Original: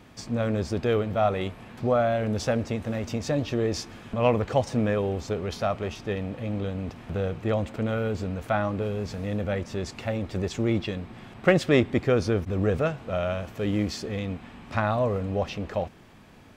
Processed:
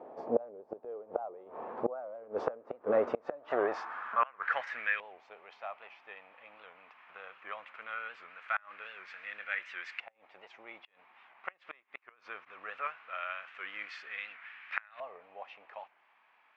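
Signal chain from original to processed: high-pass sweep 460 Hz -> 2400 Hz, 3.11–4.94; flipped gate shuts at -18 dBFS, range -27 dB; LFO low-pass saw up 0.2 Hz 770–1700 Hz; record warp 78 rpm, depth 160 cents

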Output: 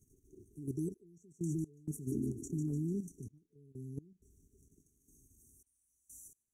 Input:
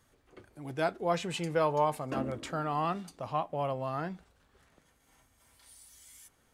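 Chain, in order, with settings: FFT band-reject 440–5600 Hz; level quantiser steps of 10 dB; thin delay 0.149 s, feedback 55%, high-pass 3700 Hz, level -7 dB; step gate "xxxx..x.xx" 64 bpm -24 dB; gain +5 dB

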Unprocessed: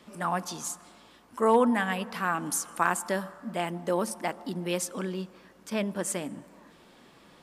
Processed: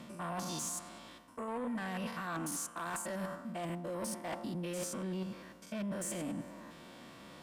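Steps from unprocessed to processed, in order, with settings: stepped spectrum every 0.1 s; notch comb 420 Hz; reverse; compressor 8:1, threshold -39 dBFS, peak gain reduction 18.5 dB; reverse; added harmonics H 5 -13 dB, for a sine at -28 dBFS; gain -1 dB

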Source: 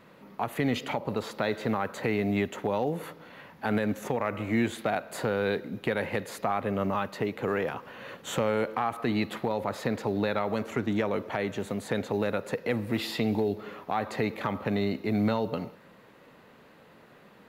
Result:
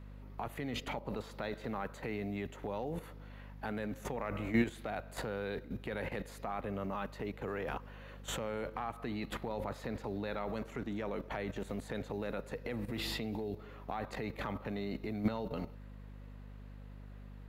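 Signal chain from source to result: hum 50 Hz, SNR 11 dB; level quantiser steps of 12 dB; gain -2 dB

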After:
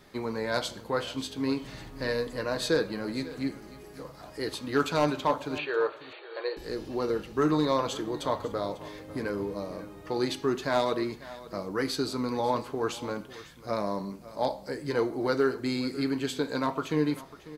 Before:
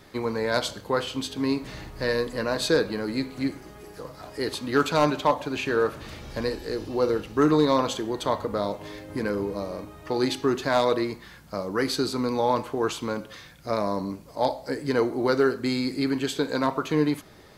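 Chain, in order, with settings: flange 0.28 Hz, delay 4.8 ms, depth 2.8 ms, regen -68%; 5.58–6.57 brick-wall FIR band-pass 330–4600 Hz; on a send: echo 0.546 s -17.5 dB

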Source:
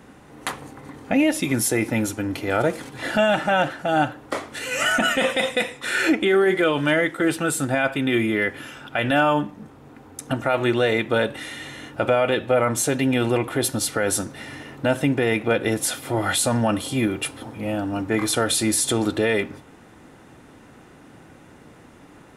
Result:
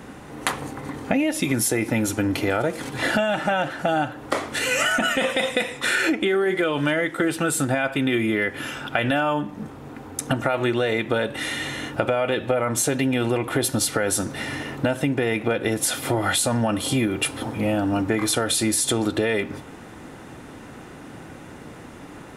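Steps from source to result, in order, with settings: compressor 6:1, threshold -26 dBFS, peak gain reduction 11.5 dB; gain +7 dB

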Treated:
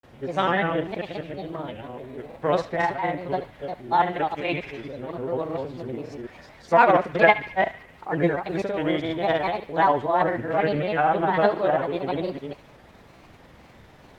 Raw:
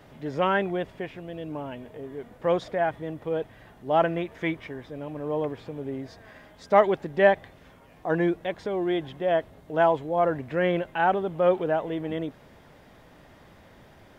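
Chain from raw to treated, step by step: reverse delay 0.196 s, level -4 dB; formant shift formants +2 st; grains, spray 37 ms, pitch spread up and down by 3 st; narrowing echo 72 ms, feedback 60%, band-pass 2400 Hz, level -13 dB; gain +2 dB

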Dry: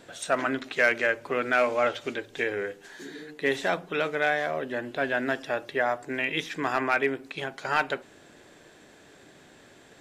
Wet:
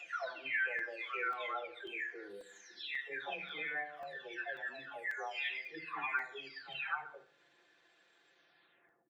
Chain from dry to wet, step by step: spectral delay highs early, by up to 0.935 s; air absorption 210 m; spectral noise reduction 12 dB; HPF 1400 Hz 6 dB/oct; high shelf 3100 Hz +7 dB; feedback echo 79 ms, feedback 37%, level -18 dB; phaser 0.72 Hz, delay 2.6 ms, feedback 20%; tempo 1.1×; compressor 1.5:1, threshold -55 dBFS, peak gain reduction 11 dB; on a send at -12 dB: reverb RT60 0.75 s, pre-delay 3 ms; on the sum: crackling interface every 0.54 s, samples 128, zero, from 0.79; gain +4 dB

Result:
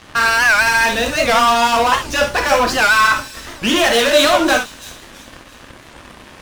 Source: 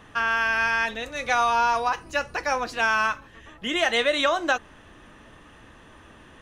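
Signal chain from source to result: notch 2100 Hz; sample leveller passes 5; on a send: thin delay 0.333 s, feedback 40%, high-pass 5100 Hz, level -9 dB; on the sum: non-linear reverb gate 90 ms flat, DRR 2 dB; record warp 78 rpm, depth 160 cents; gain -3 dB

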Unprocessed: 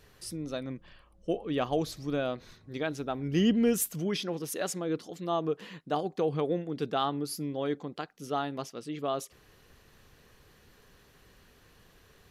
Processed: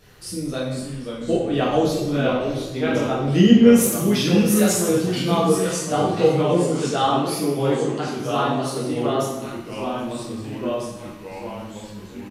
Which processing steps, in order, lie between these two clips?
3.86–5.45 high shelf 4300 Hz +6 dB; echoes that change speed 0.468 s, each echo -2 st, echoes 3, each echo -6 dB; echo 0.77 s -22 dB; plate-style reverb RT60 0.91 s, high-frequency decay 0.85×, DRR -6.5 dB; gain +2.5 dB

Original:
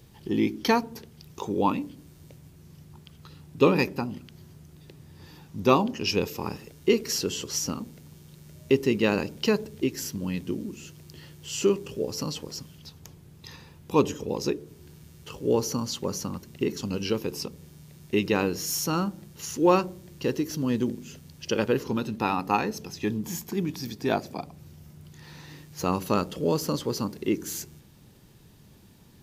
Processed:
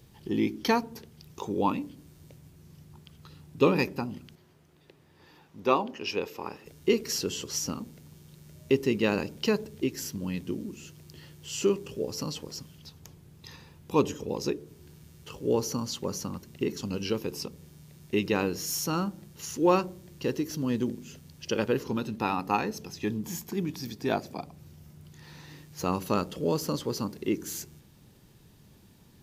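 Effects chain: 4.35–6.66 tone controls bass -13 dB, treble -9 dB; gain -2.5 dB

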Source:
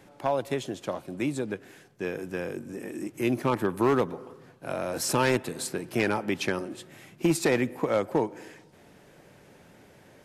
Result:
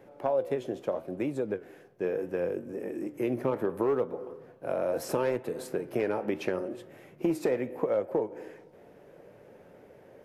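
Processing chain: graphic EQ 500/4000/8000 Hz +11/-6/-9 dB; compressor 6:1, threshold -20 dBFS, peak gain reduction 8.5 dB; flange 0.74 Hz, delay 7.9 ms, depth 8.9 ms, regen +77%

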